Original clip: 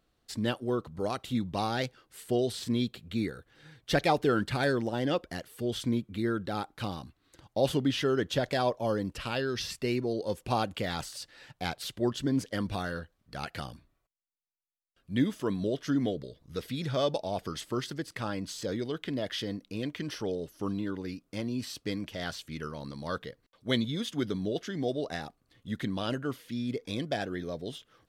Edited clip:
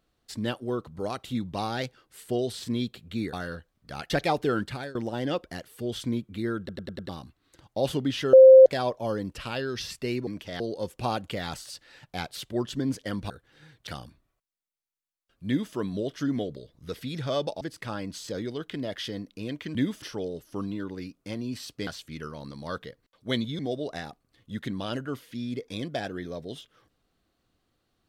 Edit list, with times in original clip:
0:03.33–0:03.90: swap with 0:12.77–0:13.54
0:04.40–0:04.75: fade out, to −22 dB
0:06.39: stutter in place 0.10 s, 5 plays
0:08.13–0:08.46: beep over 525 Hz −7.5 dBFS
0:15.14–0:15.41: duplicate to 0:20.09
0:17.28–0:17.95: remove
0:21.94–0:22.27: move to 0:10.07
0:23.99–0:24.76: remove

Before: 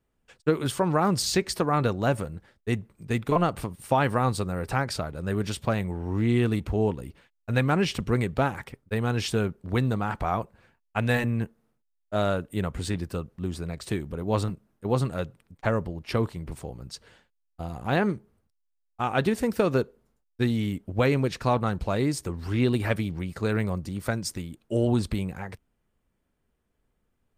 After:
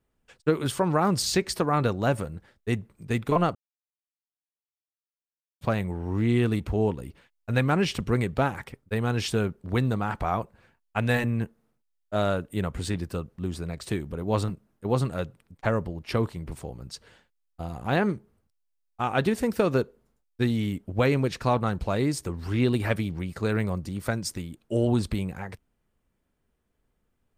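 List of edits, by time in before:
0:03.55–0:05.61: silence

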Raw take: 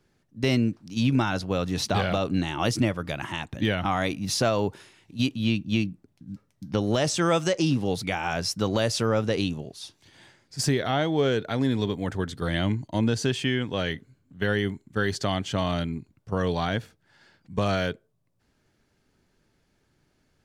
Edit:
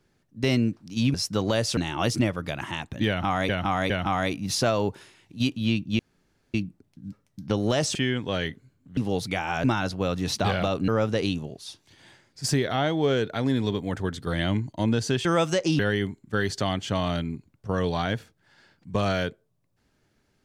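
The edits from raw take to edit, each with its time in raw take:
0:01.14–0:02.38: swap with 0:08.40–0:09.03
0:03.69–0:04.10: repeat, 3 plays
0:05.78: splice in room tone 0.55 s
0:07.19–0:07.73: swap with 0:13.40–0:14.42

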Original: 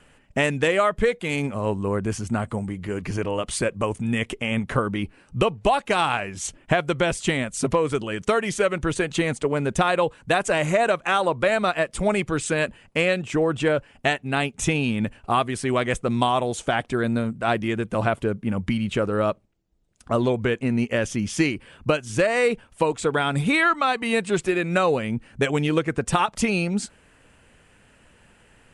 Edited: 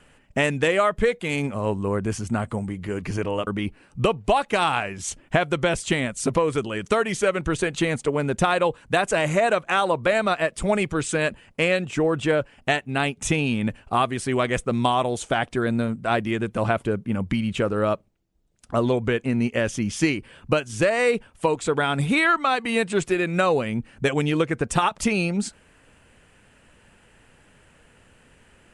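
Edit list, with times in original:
0:03.47–0:04.84: remove

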